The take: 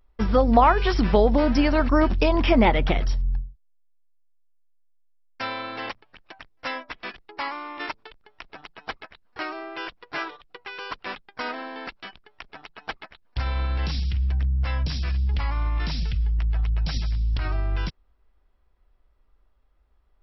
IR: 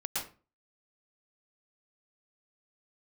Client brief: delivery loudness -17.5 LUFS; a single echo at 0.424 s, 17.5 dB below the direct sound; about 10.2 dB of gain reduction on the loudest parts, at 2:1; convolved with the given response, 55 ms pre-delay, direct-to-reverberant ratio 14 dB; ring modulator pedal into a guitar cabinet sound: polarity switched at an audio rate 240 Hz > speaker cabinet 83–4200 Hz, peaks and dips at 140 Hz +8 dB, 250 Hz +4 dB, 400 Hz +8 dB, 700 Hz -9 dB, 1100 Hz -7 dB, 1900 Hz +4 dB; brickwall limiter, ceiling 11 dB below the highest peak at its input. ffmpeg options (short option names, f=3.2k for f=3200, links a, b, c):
-filter_complex "[0:a]acompressor=threshold=-31dB:ratio=2,alimiter=level_in=0.5dB:limit=-24dB:level=0:latency=1,volume=-0.5dB,aecho=1:1:424:0.133,asplit=2[a][b];[1:a]atrim=start_sample=2205,adelay=55[c];[b][c]afir=irnorm=-1:irlink=0,volume=-18dB[d];[a][d]amix=inputs=2:normalize=0,aeval=exprs='val(0)*sgn(sin(2*PI*240*n/s))':c=same,highpass=83,equalizer=f=140:t=q:w=4:g=8,equalizer=f=250:t=q:w=4:g=4,equalizer=f=400:t=q:w=4:g=8,equalizer=f=700:t=q:w=4:g=-9,equalizer=f=1.1k:t=q:w=4:g=-7,equalizer=f=1.9k:t=q:w=4:g=4,lowpass=f=4.2k:w=0.5412,lowpass=f=4.2k:w=1.3066,volume=14dB"